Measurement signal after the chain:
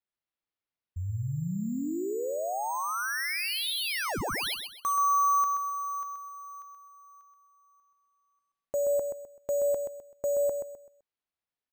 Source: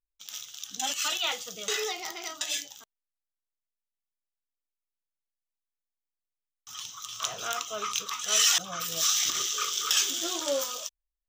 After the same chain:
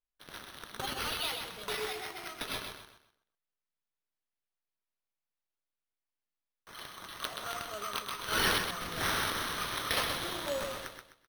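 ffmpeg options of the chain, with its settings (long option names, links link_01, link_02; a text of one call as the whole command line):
ffmpeg -i in.wav -af "acrusher=samples=6:mix=1:aa=0.000001,aecho=1:1:128|256|384|512:0.501|0.155|0.0482|0.0149,volume=-6.5dB" out.wav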